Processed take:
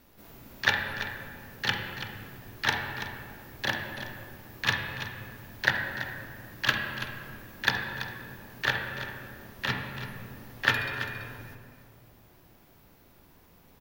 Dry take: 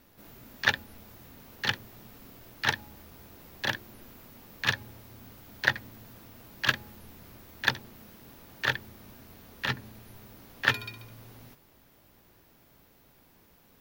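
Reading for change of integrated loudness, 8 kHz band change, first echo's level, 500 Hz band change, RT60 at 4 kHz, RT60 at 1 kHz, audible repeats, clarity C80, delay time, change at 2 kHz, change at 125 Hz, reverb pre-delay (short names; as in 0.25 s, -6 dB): -0.5 dB, +0.5 dB, -11.0 dB, +3.0 dB, 1.2 s, 1.8 s, 1, 4.0 dB, 0.333 s, +2.0 dB, +3.0 dB, 26 ms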